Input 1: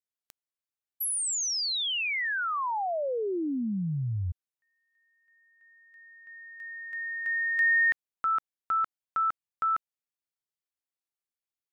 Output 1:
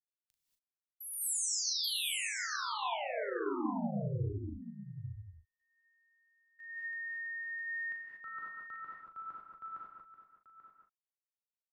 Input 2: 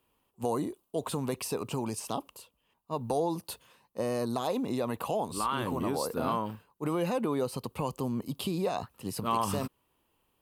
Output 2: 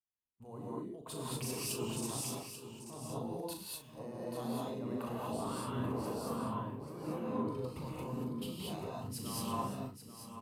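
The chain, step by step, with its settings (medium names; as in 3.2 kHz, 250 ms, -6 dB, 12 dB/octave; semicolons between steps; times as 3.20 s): bass shelf 220 Hz +7.5 dB; in parallel at +3 dB: compression 6:1, threshold -39 dBFS; on the sum: peak limiter -24 dBFS; level held to a coarse grid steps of 19 dB; doubling 39 ms -7 dB; on a send: delay 836 ms -6 dB; on the sum: gated-style reverb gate 260 ms rising, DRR -4 dB; three bands expanded up and down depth 70%; trim -8 dB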